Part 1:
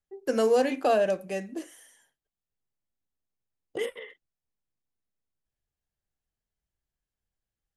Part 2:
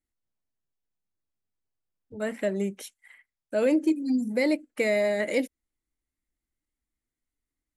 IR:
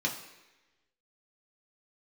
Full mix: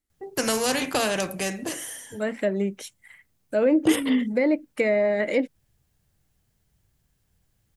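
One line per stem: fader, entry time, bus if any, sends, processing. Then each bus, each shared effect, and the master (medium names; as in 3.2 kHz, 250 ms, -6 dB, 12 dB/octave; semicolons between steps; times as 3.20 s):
+1.5 dB, 0.10 s, no send, peaking EQ 120 Hz +11.5 dB 1.9 oct; spectrum-flattening compressor 2:1
+3.0 dB, 0.00 s, no send, low-pass that closes with the level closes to 1.8 kHz, closed at -20.5 dBFS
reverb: none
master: treble shelf 7 kHz +4 dB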